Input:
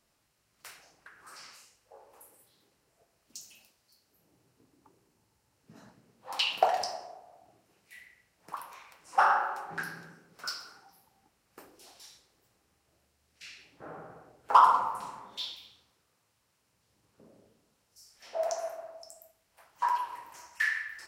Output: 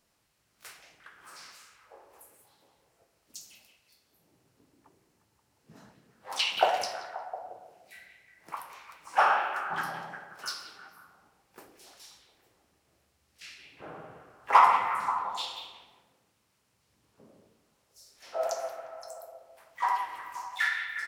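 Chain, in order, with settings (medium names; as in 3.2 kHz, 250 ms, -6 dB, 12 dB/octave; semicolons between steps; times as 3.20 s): harmony voices -4 st -10 dB, +3 st -13 dB, +12 st -15 dB; repeats whose band climbs or falls 177 ms, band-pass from 2.7 kHz, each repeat -0.7 oct, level -6 dB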